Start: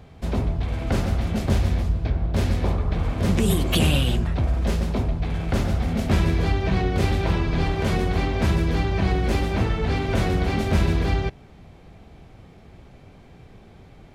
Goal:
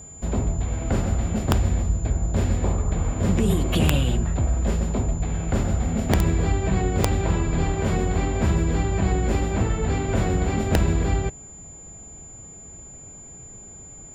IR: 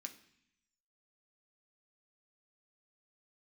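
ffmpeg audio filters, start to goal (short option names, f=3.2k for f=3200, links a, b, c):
-af "highshelf=f=2.4k:g=-8.5,aeval=exprs='val(0)+0.00891*sin(2*PI*7100*n/s)':c=same,aeval=exprs='(mod(2.82*val(0)+1,2)-1)/2.82':c=same"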